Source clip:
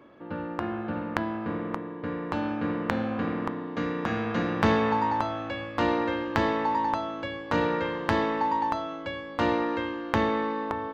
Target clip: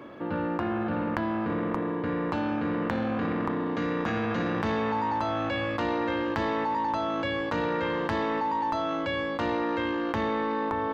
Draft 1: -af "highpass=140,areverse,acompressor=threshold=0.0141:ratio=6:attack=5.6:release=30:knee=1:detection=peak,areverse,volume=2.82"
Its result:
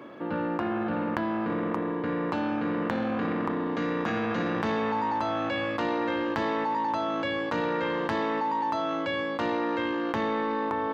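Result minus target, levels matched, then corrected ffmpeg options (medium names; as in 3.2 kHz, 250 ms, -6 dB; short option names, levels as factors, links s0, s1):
125 Hz band -3.0 dB
-af "highpass=38,areverse,acompressor=threshold=0.0141:ratio=6:attack=5.6:release=30:knee=1:detection=peak,areverse,volume=2.82"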